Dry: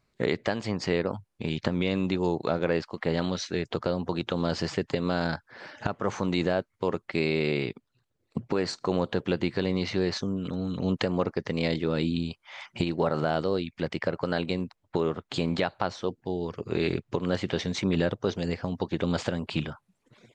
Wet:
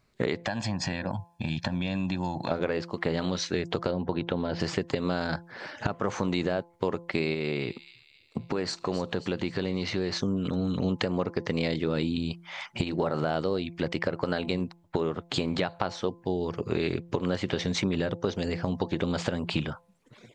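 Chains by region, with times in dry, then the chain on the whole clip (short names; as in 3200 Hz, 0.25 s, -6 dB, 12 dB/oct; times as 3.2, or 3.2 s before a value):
0.46–2.51 HPF 43 Hz + comb 1.2 ms, depth 98% + compressor 2.5:1, threshold -32 dBFS
3.91–4.6 air absorption 240 m + notch 1200 Hz, Q 6.5
7.34–10.2 compressor 1.5:1, threshold -36 dBFS + thin delay 0.267 s, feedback 45%, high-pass 3500 Hz, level -9 dB
whole clip: compressor, threshold -27 dBFS; de-hum 170.9 Hz, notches 6; gain +4 dB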